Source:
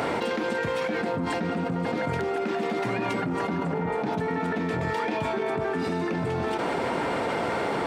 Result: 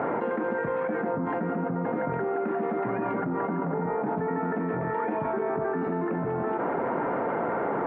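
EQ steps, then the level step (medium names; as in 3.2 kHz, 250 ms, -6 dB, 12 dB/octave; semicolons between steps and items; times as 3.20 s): high-pass 56 Hz; low-pass 1.6 kHz 24 dB/octave; peaking EQ 86 Hz -13 dB 0.69 oct; 0.0 dB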